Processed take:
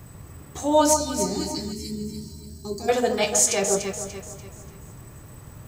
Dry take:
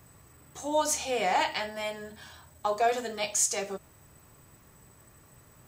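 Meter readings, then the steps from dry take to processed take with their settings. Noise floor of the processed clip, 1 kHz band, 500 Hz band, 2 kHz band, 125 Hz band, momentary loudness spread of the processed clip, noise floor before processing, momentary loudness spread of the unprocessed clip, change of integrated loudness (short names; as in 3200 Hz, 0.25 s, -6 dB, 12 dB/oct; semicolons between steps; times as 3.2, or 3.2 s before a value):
-45 dBFS, +2.5 dB, +7.0 dB, +0.5 dB, +15.5 dB, 21 LU, -58 dBFS, 16 LU, +6.0 dB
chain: spectral gain 0.94–2.89, 430–4000 Hz -25 dB; crackle 230/s -59 dBFS; low shelf 330 Hz +8.5 dB; on a send: echo with dull and thin repeats by turns 0.146 s, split 1200 Hz, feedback 63%, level -3.5 dB; on the sum: spectral repair 1.75–2.4, 520–1800 Hz after; gain +6.5 dB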